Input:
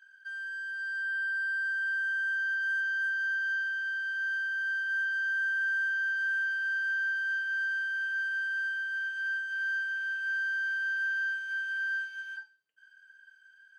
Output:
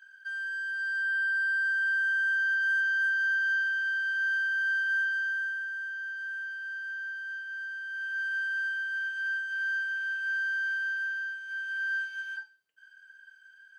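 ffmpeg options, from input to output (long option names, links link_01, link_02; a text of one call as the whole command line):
ffmpeg -i in.wav -af "volume=19dB,afade=type=out:start_time=4.87:duration=0.81:silence=0.316228,afade=type=in:start_time=7.81:duration=0.53:silence=0.421697,afade=type=out:start_time=10.73:duration=0.63:silence=0.501187,afade=type=in:start_time=11.36:duration=0.8:silence=0.398107" out.wav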